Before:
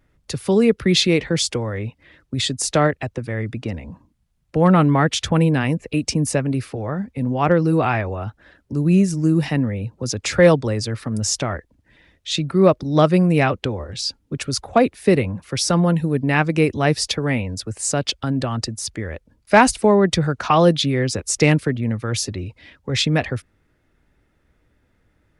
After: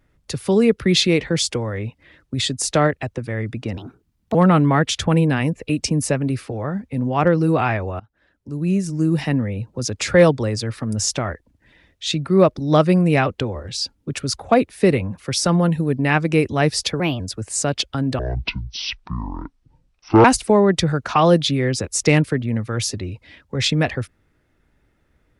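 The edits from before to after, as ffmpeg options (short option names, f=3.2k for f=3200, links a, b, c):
-filter_complex "[0:a]asplit=8[a][b][c][d][e][f][g][h];[a]atrim=end=3.774[i];[b]atrim=start=3.77:end=4.59,asetpts=PTS-STARTPTS,asetrate=62622,aresample=44100,atrim=end_sample=25466,asetpts=PTS-STARTPTS[j];[c]atrim=start=4.586:end=8.24,asetpts=PTS-STARTPTS,afade=t=out:st=3.65:d=0.004:c=hsin:silence=0.0707946[k];[d]atrim=start=8.24:end=17.244,asetpts=PTS-STARTPTS,afade=t=in:d=1.3:silence=0.0707946[l];[e]atrim=start=17.24:end=17.49,asetpts=PTS-STARTPTS,asetrate=54684,aresample=44100,atrim=end_sample=8891,asetpts=PTS-STARTPTS[m];[f]atrim=start=17.486:end=18.484[n];[g]atrim=start=18.48:end=19.59,asetpts=PTS-STARTPTS,asetrate=23814,aresample=44100[o];[h]atrim=start=19.586[p];[i][j]acrossfade=d=0.004:c1=hsin:c2=hsin[q];[k][l]concat=n=2:v=0:a=1[r];[q][r]acrossfade=d=0.004:c1=hsin:c2=hsin[s];[s][m]acrossfade=d=0.004:c1=hsin:c2=hsin[t];[t][n]acrossfade=d=0.004:c1=hsin:c2=hsin[u];[u][o]acrossfade=d=0.004:c1=hsin:c2=hsin[v];[v][p]acrossfade=d=0.004:c1=hsin:c2=hsin"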